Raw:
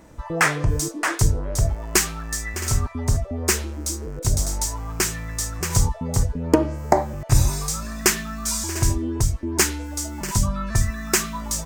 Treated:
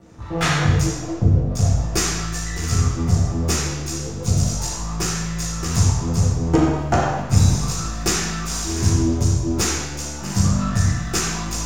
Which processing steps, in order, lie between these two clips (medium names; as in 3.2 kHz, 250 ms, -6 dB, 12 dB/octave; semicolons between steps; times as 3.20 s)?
0.85–1.55 s: steep low-pass 660 Hz 36 dB/octave; half-wave rectifier; reverberation RT60 1.1 s, pre-delay 3 ms, DRR -9.5 dB; trim -4.5 dB